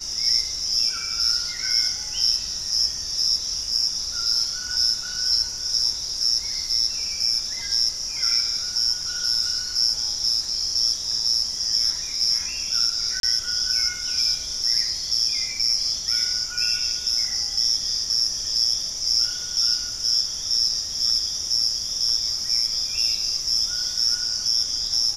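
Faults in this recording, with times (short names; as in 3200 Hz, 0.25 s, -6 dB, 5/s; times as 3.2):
13.2–13.23 gap 32 ms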